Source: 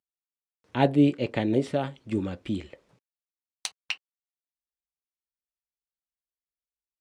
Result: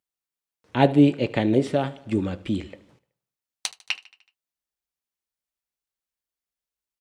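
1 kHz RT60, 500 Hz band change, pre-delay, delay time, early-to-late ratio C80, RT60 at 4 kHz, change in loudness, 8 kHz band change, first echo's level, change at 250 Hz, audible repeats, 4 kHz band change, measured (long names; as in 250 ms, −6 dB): no reverb audible, +4.0 dB, no reverb audible, 75 ms, no reverb audible, no reverb audible, +4.0 dB, +4.0 dB, −20.0 dB, +4.0 dB, 4, +4.0 dB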